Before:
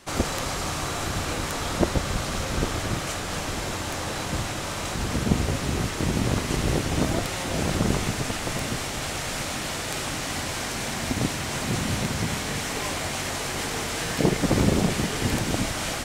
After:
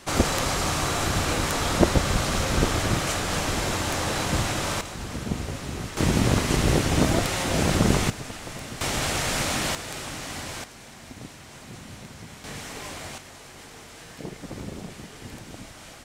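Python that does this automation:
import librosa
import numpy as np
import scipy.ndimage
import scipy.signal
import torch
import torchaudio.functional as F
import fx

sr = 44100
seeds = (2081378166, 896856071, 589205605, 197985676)

y = fx.gain(x, sr, db=fx.steps((0.0, 3.5), (4.81, -6.5), (5.97, 3.0), (8.1, -8.0), (8.81, 4.0), (9.75, -5.0), (10.64, -15.5), (12.44, -8.0), (13.18, -15.5)))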